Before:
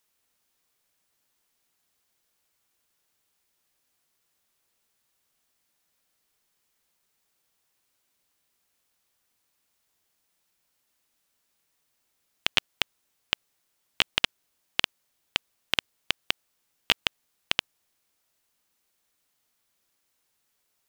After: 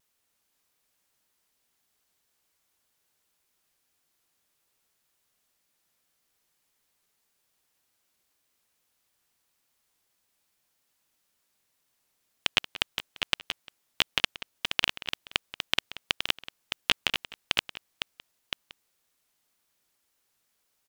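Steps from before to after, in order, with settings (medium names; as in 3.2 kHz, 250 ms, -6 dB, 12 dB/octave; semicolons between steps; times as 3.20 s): chunks repeated in reverse 516 ms, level -6.5 dB; vibrato 1.8 Hz 44 cents; echo from a far wall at 31 m, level -15 dB; trim -1 dB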